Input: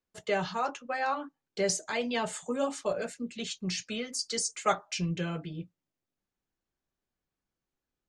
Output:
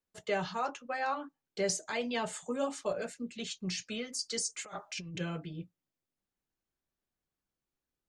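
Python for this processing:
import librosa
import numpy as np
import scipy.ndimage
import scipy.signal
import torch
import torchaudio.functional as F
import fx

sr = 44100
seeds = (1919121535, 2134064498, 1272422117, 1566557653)

y = fx.over_compress(x, sr, threshold_db=-38.0, ratio=-1.0, at=(4.58, 5.19), fade=0.02)
y = F.gain(torch.from_numpy(y), -3.0).numpy()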